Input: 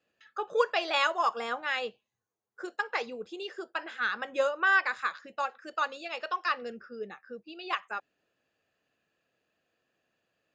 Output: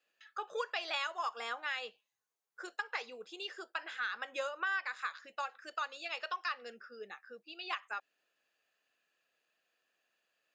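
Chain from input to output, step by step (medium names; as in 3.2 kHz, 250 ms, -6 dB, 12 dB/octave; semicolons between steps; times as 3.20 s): high-pass 1.3 kHz 6 dB/octave; compression 3:1, threshold -36 dBFS, peak gain reduction 10.5 dB; trim +1 dB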